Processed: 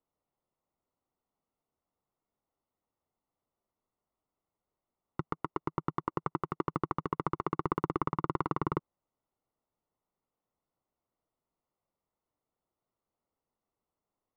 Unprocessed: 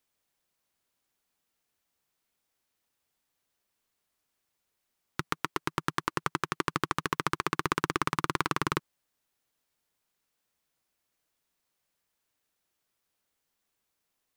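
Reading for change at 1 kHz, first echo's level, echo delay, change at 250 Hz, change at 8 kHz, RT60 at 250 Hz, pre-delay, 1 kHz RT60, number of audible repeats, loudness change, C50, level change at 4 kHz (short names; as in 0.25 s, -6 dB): -3.0 dB, none, none, 0.0 dB, under -25 dB, none, none, none, none, -3.5 dB, none, -20.5 dB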